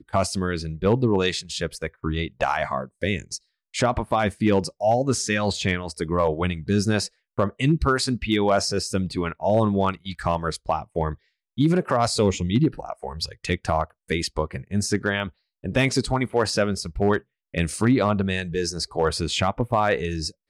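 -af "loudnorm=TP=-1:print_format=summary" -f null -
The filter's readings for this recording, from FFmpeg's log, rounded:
Input Integrated:    -24.0 LUFS
Input True Peak:     -11.0 dBTP
Input LRA:             2.0 LU
Input Threshold:     -34.1 LUFS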